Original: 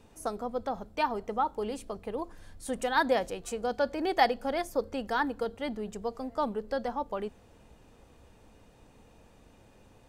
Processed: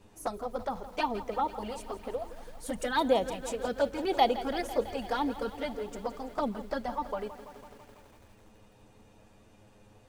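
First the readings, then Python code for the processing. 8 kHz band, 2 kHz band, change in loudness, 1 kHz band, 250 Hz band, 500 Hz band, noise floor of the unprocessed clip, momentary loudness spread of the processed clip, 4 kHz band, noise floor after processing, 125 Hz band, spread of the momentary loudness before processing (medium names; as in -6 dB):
0.0 dB, -4.0 dB, -0.5 dB, -1.0 dB, 0.0 dB, 0.0 dB, -59 dBFS, 13 LU, +1.0 dB, -59 dBFS, +0.5 dB, 11 LU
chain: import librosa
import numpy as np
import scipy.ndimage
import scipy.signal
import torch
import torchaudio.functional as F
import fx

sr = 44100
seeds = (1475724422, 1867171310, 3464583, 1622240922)

y = fx.env_flanger(x, sr, rest_ms=10.8, full_db=-24.5)
y = fx.echo_crushed(y, sr, ms=166, feedback_pct=80, bits=9, wet_db=-14.0)
y = y * 10.0 ** (2.5 / 20.0)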